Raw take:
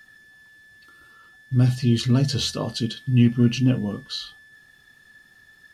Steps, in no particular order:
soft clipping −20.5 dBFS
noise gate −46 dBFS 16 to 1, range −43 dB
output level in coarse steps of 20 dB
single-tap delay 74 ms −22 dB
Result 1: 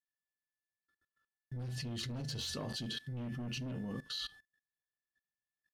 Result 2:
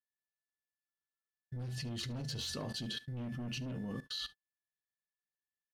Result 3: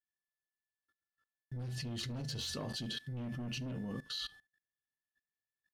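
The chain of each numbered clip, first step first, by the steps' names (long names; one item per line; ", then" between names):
single-tap delay, then noise gate, then soft clipping, then output level in coarse steps
soft clipping, then output level in coarse steps, then single-tap delay, then noise gate
soft clipping, then noise gate, then single-tap delay, then output level in coarse steps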